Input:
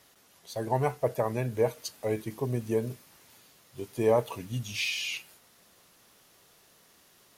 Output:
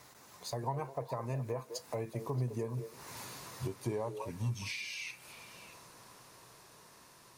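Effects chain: Doppler pass-by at 3.05, 21 m/s, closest 27 m; compressor 5:1, threshold -51 dBFS, peak gain reduction 26 dB; thirty-one-band EQ 125 Hz +8 dB, 1000 Hz +8 dB, 3150 Hz -7 dB, 12500 Hz -7 dB; on a send: delay with a stepping band-pass 0.209 s, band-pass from 450 Hz, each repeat 1.4 oct, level -7 dB; on the sum: gain +12 dB

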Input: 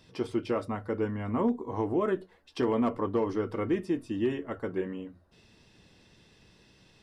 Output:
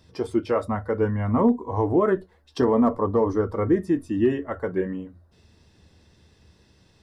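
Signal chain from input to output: bell 2700 Hz -5.5 dB 0.78 oct, from 2.58 s -12.5 dB, from 3.87 s -5.5 dB; spectral noise reduction 7 dB; bell 78 Hz +15 dB 0.39 oct; gain +8 dB

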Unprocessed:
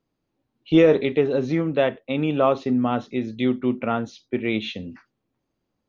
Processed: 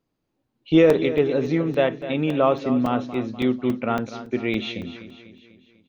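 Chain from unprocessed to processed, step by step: feedback echo 0.247 s, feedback 52%, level -13 dB; crackling interface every 0.28 s, samples 128, zero, from 0.9

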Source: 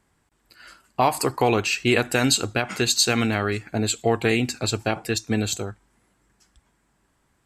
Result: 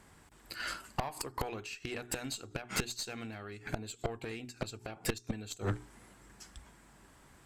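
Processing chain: notches 60/120/180/240/300/360/420 Hz; flipped gate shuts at -16 dBFS, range -28 dB; tube stage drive 36 dB, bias 0.55; gain +10.5 dB

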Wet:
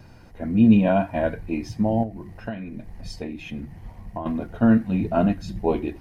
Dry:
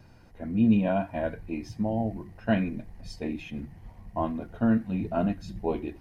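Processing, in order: 2.03–4.26 compressor 16:1, threshold -35 dBFS, peak gain reduction 17 dB; gain +6.5 dB

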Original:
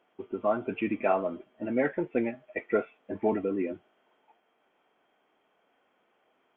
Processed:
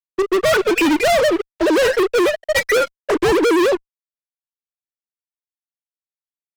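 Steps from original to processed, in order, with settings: sine-wave speech; fuzz box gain 43 dB, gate -53 dBFS

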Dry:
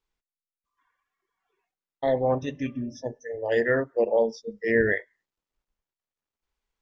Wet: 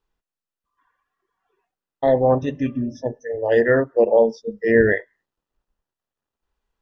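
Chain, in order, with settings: high shelf 2800 Hz -10.5 dB; notch 2200 Hz, Q 7.9; gain +7.5 dB

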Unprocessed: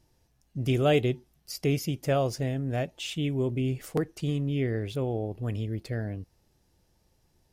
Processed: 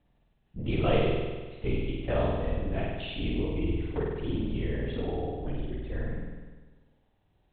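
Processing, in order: LPC vocoder at 8 kHz whisper; flutter echo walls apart 8.5 m, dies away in 1.4 s; gain -5 dB

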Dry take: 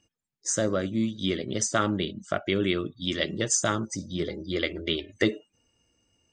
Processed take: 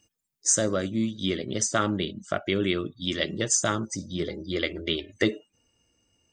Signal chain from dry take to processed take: high shelf 6300 Hz +12 dB, from 0.88 s +2.5 dB

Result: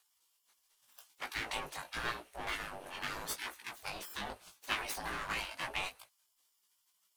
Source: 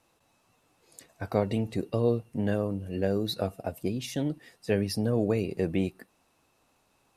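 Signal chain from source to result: minimum comb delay 0.48 ms; spectral gate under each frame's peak -20 dB weak; chorus 0.85 Hz, delay 16 ms, depth 4.3 ms; gain +9.5 dB

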